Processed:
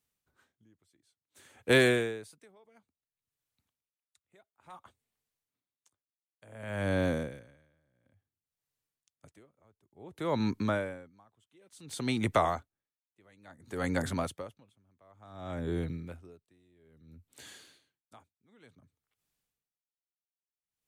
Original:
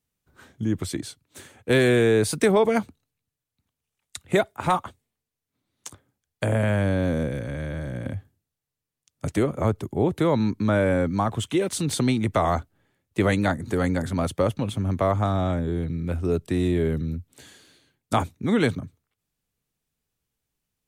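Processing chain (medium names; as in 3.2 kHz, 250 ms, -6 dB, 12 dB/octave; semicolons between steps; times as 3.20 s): bass shelf 430 Hz -7.5 dB; logarithmic tremolo 0.57 Hz, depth 39 dB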